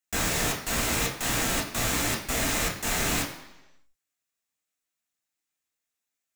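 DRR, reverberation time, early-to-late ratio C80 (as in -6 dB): -2.0 dB, 1.0 s, 10.0 dB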